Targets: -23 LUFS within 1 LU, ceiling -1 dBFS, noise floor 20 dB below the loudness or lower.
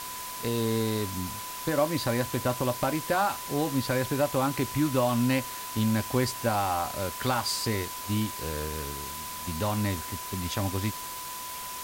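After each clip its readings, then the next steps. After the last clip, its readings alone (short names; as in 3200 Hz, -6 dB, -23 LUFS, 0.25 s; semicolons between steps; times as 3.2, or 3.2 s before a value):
steady tone 1000 Hz; tone level -39 dBFS; noise floor -38 dBFS; noise floor target -49 dBFS; loudness -29.0 LUFS; peak -12.5 dBFS; loudness target -23.0 LUFS
-> notch 1000 Hz, Q 30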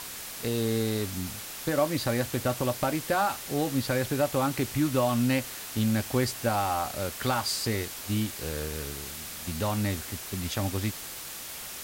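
steady tone none; noise floor -40 dBFS; noise floor target -49 dBFS
-> denoiser 9 dB, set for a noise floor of -40 dBFS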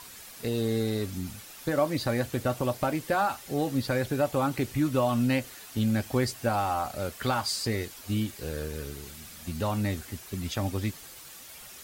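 noise floor -47 dBFS; noise floor target -50 dBFS
-> denoiser 6 dB, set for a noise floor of -47 dBFS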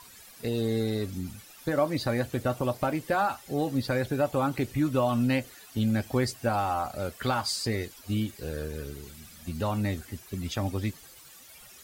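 noise floor -51 dBFS; loudness -29.5 LUFS; peak -13.5 dBFS; loudness target -23.0 LUFS
-> gain +6.5 dB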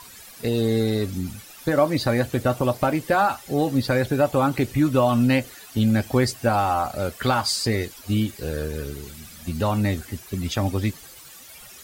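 loudness -23.0 LUFS; peak -7.0 dBFS; noise floor -45 dBFS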